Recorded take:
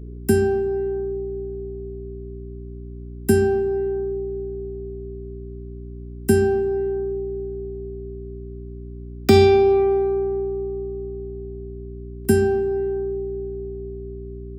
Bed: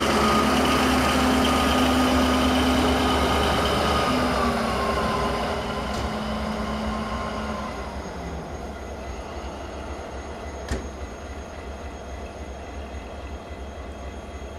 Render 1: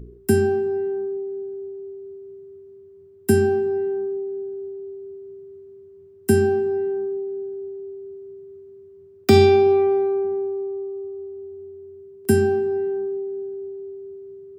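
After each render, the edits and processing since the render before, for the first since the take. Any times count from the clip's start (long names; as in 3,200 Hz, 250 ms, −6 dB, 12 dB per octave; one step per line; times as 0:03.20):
hum removal 60 Hz, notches 5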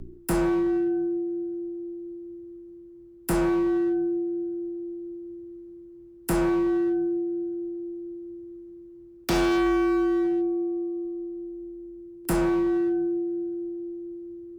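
gain into a clipping stage and back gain 21 dB
frequency shifter −48 Hz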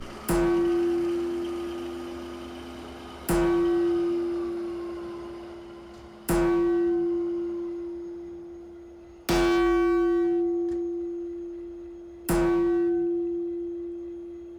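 mix in bed −21 dB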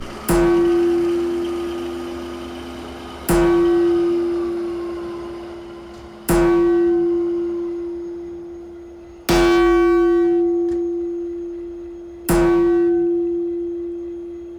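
level +8 dB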